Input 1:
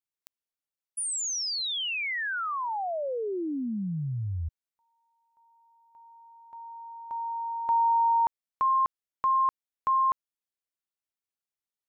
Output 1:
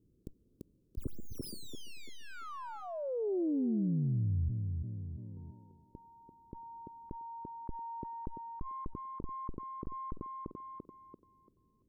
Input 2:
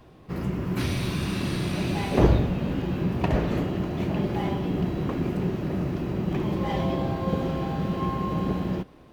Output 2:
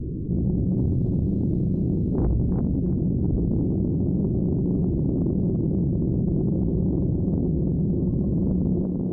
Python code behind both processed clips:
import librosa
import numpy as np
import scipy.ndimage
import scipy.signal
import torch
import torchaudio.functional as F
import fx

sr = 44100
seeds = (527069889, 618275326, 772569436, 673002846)

p1 = fx.tracing_dist(x, sr, depth_ms=0.081)
p2 = scipy.signal.sosfilt(scipy.signal.cheby2(4, 40, 730.0, 'lowpass', fs=sr, output='sos'), p1)
p3 = fx.low_shelf(p2, sr, hz=130.0, db=4.5)
p4 = fx.rider(p3, sr, range_db=4, speed_s=2.0)
p5 = fx.tube_stage(p4, sr, drive_db=18.0, bias=0.5)
p6 = p5 + fx.echo_thinned(p5, sr, ms=340, feedback_pct=28, hz=210.0, wet_db=-7, dry=0)
y = fx.env_flatten(p6, sr, amount_pct=70)